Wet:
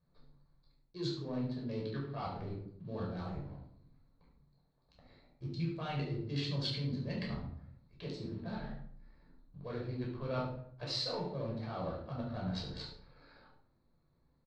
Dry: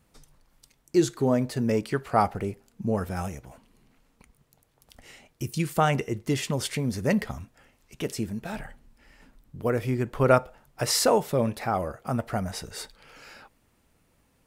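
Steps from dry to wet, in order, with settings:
adaptive Wiener filter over 15 samples
leveller curve on the samples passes 1
reversed playback
downward compressor 6 to 1, threshold −29 dBFS, peak gain reduction 16 dB
reversed playback
transistor ladder low-pass 4,400 Hz, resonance 80%
on a send: single-tap delay 71 ms −13 dB
on the sum: rectangular room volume 860 cubic metres, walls furnished, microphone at 5.5 metres
level −3.5 dB

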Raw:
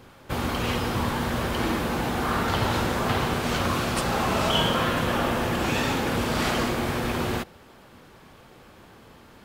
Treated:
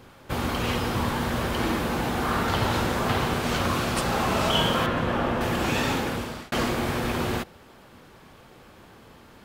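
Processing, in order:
0:04.86–0:05.41: low-pass filter 2,100 Hz 6 dB per octave
0:05.95–0:06.52: fade out

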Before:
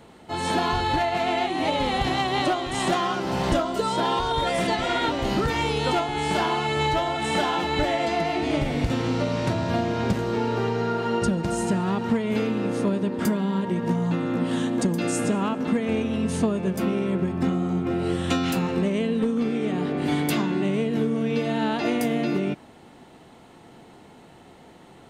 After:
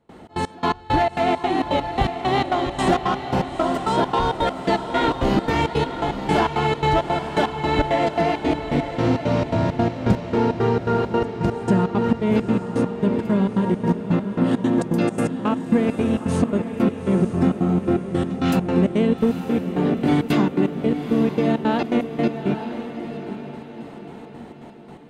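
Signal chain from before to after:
high-shelf EQ 2,000 Hz −9 dB
in parallel at −11 dB: hard clipping −26 dBFS, distortion −9 dB
on the sum: gate pattern ".xx.x..x..xx.xx" 167 BPM −24 dB
feedback delay with all-pass diffusion 892 ms, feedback 44%, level −9 dB
level +5 dB

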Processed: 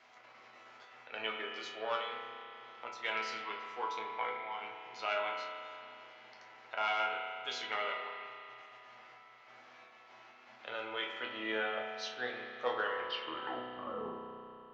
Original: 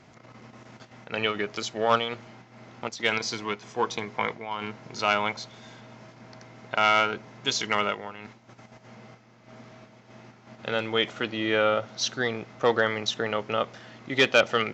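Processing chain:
turntable brake at the end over 2.03 s
three-way crossover with the lows and the highs turned down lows −20 dB, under 420 Hz, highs −14 dB, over 4,400 Hz
resonators tuned to a chord E2 sus4, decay 0.3 s
spring reverb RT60 2.4 s, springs 32 ms, chirp 55 ms, DRR 2.5 dB
one half of a high-frequency compander encoder only
level +1.5 dB

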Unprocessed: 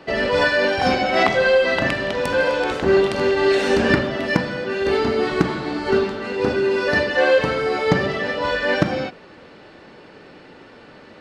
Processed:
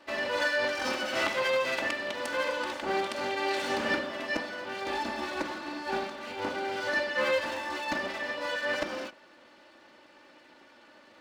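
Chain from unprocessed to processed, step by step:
lower of the sound and its delayed copy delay 3.4 ms
high-pass filter 420 Hz 6 dB per octave
level −8.5 dB

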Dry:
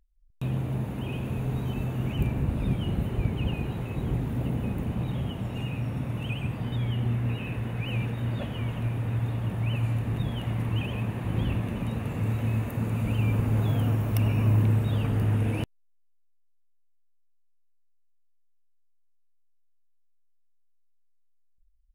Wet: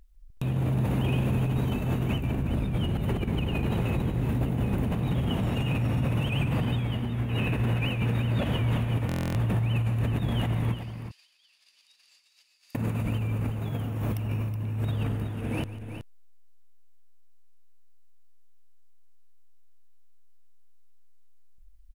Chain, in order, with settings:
compressor whose output falls as the input rises −33 dBFS, ratio −1
brickwall limiter −26.5 dBFS, peak gain reduction 7.5 dB
0:10.74–0:12.75: four-pole ladder band-pass 5,000 Hz, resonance 85%
multi-tap delay 147/372 ms −16/−10 dB
buffer that repeats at 0:09.07, samples 1,024, times 11
level +7 dB

